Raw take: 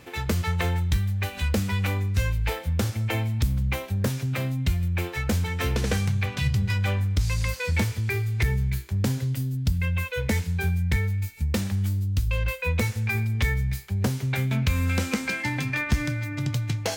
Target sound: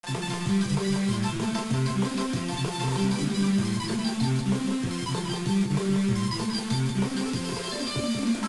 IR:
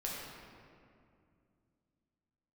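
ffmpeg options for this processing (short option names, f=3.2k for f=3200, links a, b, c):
-filter_complex "[0:a]aemphasis=mode=reproduction:type=75fm,alimiter=limit=-21dB:level=0:latency=1:release=95,aresample=11025,acrusher=bits=5:mix=0:aa=0.000001,aresample=44100[a];[1:a]atrim=start_sample=2205,atrim=end_sample=3969[b];[a][b]afir=irnorm=-1:irlink=0,asetrate=88200,aresample=44100,asplit=2[c][d];[d]aecho=0:1:188:0.501[e];[c][e]amix=inputs=2:normalize=0"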